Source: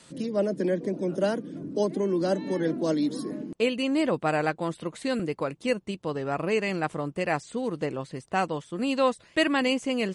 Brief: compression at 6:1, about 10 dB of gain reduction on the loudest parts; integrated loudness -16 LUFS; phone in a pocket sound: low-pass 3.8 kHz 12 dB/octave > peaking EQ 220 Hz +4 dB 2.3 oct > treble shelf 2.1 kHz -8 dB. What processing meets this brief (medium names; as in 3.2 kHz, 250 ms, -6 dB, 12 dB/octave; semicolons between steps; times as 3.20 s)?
compression 6:1, threshold -30 dBFS; low-pass 3.8 kHz 12 dB/octave; peaking EQ 220 Hz +4 dB 2.3 oct; treble shelf 2.1 kHz -8 dB; trim +16.5 dB